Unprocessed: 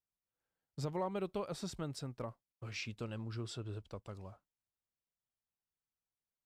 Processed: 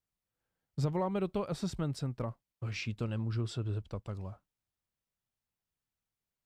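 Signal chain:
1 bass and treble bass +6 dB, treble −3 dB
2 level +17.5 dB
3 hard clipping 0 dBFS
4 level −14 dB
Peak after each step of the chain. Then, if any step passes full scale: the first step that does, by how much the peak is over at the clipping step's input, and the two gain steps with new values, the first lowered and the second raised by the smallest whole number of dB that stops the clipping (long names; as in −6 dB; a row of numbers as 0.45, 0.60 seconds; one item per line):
−23.0, −5.5, −5.5, −19.5 dBFS
no step passes full scale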